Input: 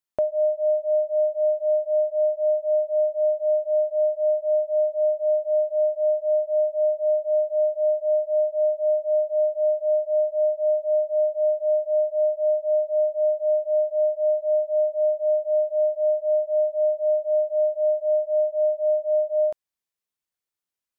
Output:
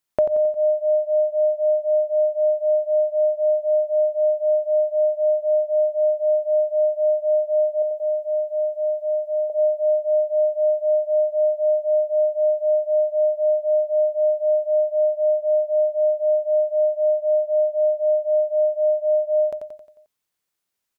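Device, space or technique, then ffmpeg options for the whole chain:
parallel compression: -filter_complex "[0:a]bandreject=f=50:t=h:w=6,bandreject=f=100:t=h:w=6,asettb=1/sr,asplit=3[s0][s1][s2];[s0]atrim=end=7.824[s3];[s1]atrim=start=7.82:end=9.5,asetpts=PTS-STARTPTS,afade=t=in:d=0.004:c=qsin,afade=t=out:st=1.676:d=0.004:c=qsin,equalizer=f=600:t=o:w=0.77:g=-4.5[s4];[s2]atrim=start=9.496[s5];[s3][s4]acrossfade=d=0.004:c1=hsin:c2=qsin[s6];[s6][s5]acrossfade=d=0.004:c1=qsin:c2=hsin,aecho=1:1:89|178|267|356|445|534:0.447|0.223|0.112|0.0558|0.0279|0.014,asplit=2[s7][s8];[s8]acompressor=threshold=0.0251:ratio=6,volume=0.75[s9];[s7][s9]amix=inputs=2:normalize=0,volume=1.33"

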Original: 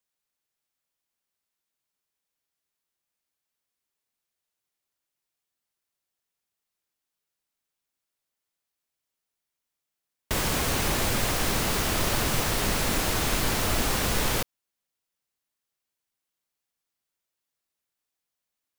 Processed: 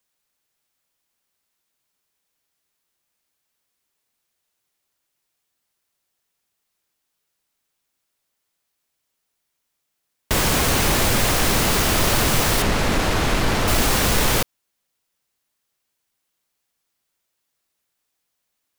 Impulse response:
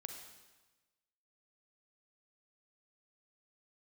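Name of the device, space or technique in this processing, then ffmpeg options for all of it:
parallel distortion: -filter_complex "[0:a]asettb=1/sr,asplit=3[s0][s1][s2];[s0]atrim=end=12.624[s3];[s1]atrim=start=12.62:end=13.68,asetpts=PTS-STARTPTS,afade=t=in:d=0.004:c=qsin,afade=t=out:st=1.056:d=0.004:c=qsin,aemphasis=mode=reproduction:type=50kf[s4];[s2]atrim=start=13.676[s5];[s3][s4]acrossfade=d=0.004:c1=hsin:c2=qsin[s6];[s6][s5]acrossfade=d=0.004:c1=qsin:c2=hsin,asplit=2[s7][s8];[s8]asoftclip=type=hard:threshold=0.0376,volume=0.562[s9];[s7][s9]amix=inputs=2:normalize=0,volume=1.78"

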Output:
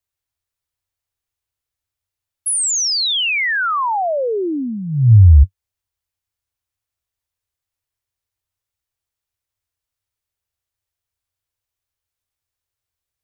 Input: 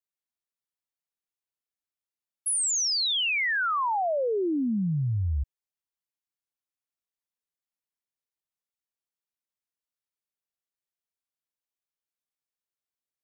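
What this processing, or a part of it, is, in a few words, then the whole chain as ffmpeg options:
car stereo with a boomy subwoofer: -af "lowshelf=f=130:t=q:w=3:g=11,alimiter=limit=0.282:level=0:latency=1:release=178,volume=2.51"

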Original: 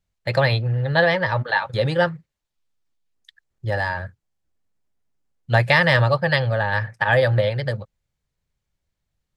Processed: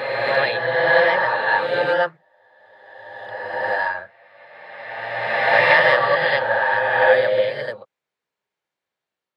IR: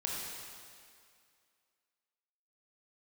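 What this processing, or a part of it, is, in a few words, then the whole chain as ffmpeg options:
ghost voice: -filter_complex "[0:a]areverse[s0];[1:a]atrim=start_sample=2205[s1];[s0][s1]afir=irnorm=-1:irlink=0,areverse,highpass=340,bass=f=250:g=-6,treble=f=4000:g=-11,volume=1.12"

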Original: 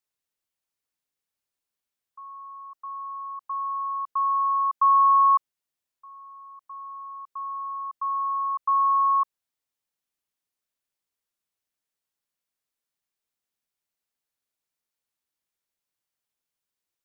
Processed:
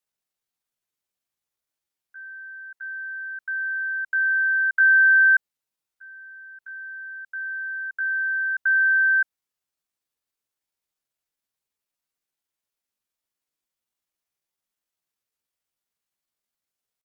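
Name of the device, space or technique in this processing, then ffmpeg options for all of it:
chipmunk voice: -af "asetrate=62367,aresample=44100,atempo=0.707107,volume=1.26"

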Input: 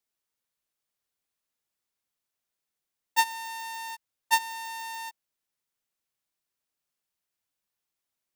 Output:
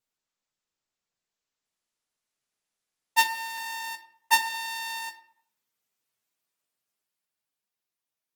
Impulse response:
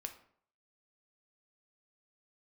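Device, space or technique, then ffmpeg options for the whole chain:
far-field microphone of a smart speaker: -filter_complex "[0:a]asettb=1/sr,asplit=3[s0][s1][s2];[s0]atrim=end=4.454[s3];[s1]atrim=start=4.45:end=4.99,asetpts=PTS-STARTPTS,afade=t=in:d=0.004:c=qsin,afade=t=out:st=0.536:d=0.004:c=qsin,equalizer=f=3800:w=2.1:g=5[s4];[s2]atrim=start=4.986[s5];[s3][s4]acrossfade=d=0.004:c1=hsin:c2=qsin[s6];[s6][s5]acrossfade=d=0.004:c1=qsin:c2=hsin[s7];[1:a]atrim=start_sample=2205[s8];[s7][s8]afir=irnorm=-1:irlink=0,highpass=f=95:w=0.5412,highpass=f=95:w=1.3066,dynaudnorm=f=310:g=11:m=2.11" -ar 48000 -c:a libopus -b:a 16k

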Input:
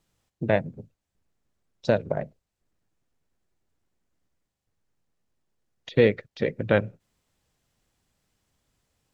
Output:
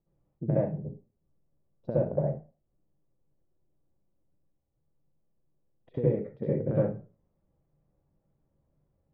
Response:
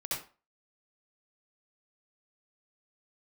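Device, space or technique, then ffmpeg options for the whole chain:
television next door: -filter_complex "[0:a]acompressor=threshold=0.0631:ratio=6,lowpass=580[s0];[1:a]atrim=start_sample=2205[s1];[s0][s1]afir=irnorm=-1:irlink=0"

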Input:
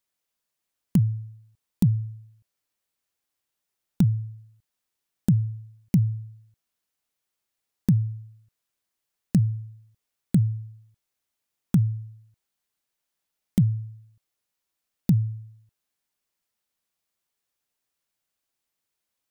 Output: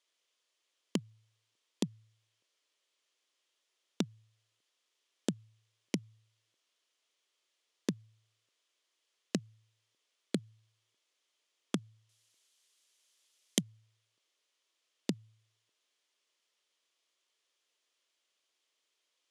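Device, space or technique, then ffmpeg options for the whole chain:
phone speaker on a table: -filter_complex "[0:a]highpass=f=340:w=0.5412,highpass=f=340:w=1.3066,equalizer=f=800:t=q:w=4:g=-8,equalizer=f=1500:t=q:w=4:g=-4,equalizer=f=3200:t=q:w=4:g=6,equalizer=f=8300:t=q:w=4:g=-5,lowpass=f=8600:w=0.5412,lowpass=f=8600:w=1.3066,asettb=1/sr,asplit=3[s0][s1][s2];[s0]atrim=end=12.094[s3];[s1]atrim=start=12.09:end=13.61,asetpts=PTS-STARTPTS,afade=t=in:d=0.004:c=qsin,afade=t=out:st=1.516:d=0.004:c=qsin,aemphasis=mode=production:type=75kf[s4];[s2]atrim=start=13.606[s5];[s3][s4]acrossfade=d=0.004:c1=hsin:c2=qsin[s6];[s6][s5]acrossfade=d=0.004:c1=qsin:c2=hsin,volume=1.78"

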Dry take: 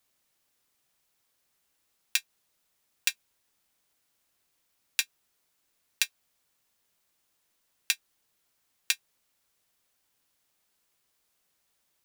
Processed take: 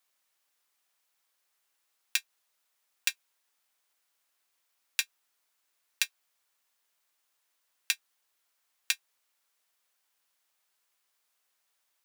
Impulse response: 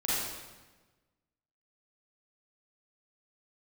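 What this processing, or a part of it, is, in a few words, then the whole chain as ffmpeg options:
filter by subtraction: -filter_complex "[0:a]asplit=2[s0][s1];[s1]lowpass=1100,volume=-1[s2];[s0][s2]amix=inputs=2:normalize=0,volume=0.75"

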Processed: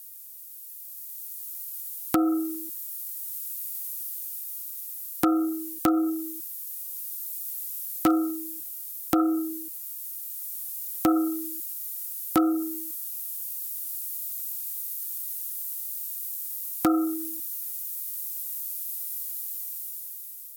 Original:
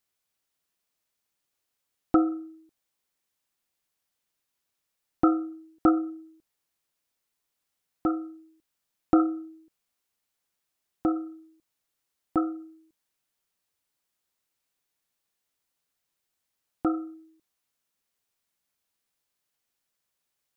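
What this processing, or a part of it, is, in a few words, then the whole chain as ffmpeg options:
FM broadcast chain: -filter_complex "[0:a]highpass=42,dynaudnorm=f=310:g=7:m=3.35,acrossover=split=540|1300[s0][s1][s2];[s0]acompressor=threshold=0.112:ratio=4[s3];[s1]acompressor=threshold=0.0447:ratio=4[s4];[s2]acompressor=threshold=0.0141:ratio=4[s5];[s3][s4][s5]amix=inputs=3:normalize=0,aemphasis=mode=production:type=75fm,alimiter=limit=0.15:level=0:latency=1:release=426,asoftclip=type=hard:threshold=0.0944,lowpass=f=15000:w=0.5412,lowpass=f=15000:w=1.3066,aemphasis=mode=production:type=75fm,volume=2.51"

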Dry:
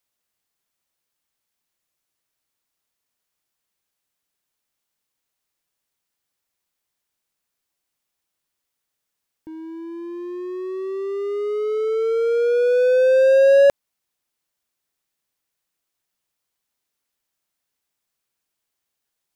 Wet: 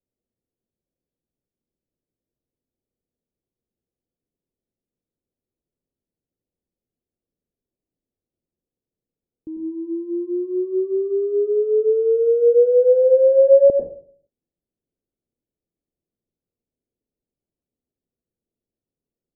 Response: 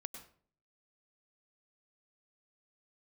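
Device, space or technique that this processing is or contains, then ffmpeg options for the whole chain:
next room: -filter_complex "[0:a]lowpass=f=480:w=0.5412,lowpass=f=480:w=1.3066[s0];[1:a]atrim=start_sample=2205[s1];[s0][s1]afir=irnorm=-1:irlink=0,volume=2.82"

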